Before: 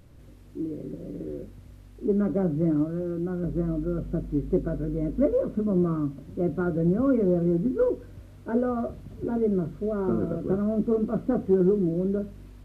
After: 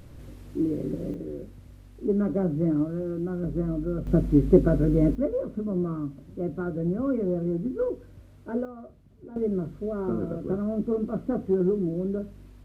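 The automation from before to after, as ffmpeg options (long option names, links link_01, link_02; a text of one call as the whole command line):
ffmpeg -i in.wav -af "asetnsamples=nb_out_samples=441:pad=0,asendcmd='1.14 volume volume -0.5dB;4.07 volume volume 7.5dB;5.15 volume volume -4dB;8.65 volume volume -14.5dB;9.36 volume volume -2.5dB',volume=6dB" out.wav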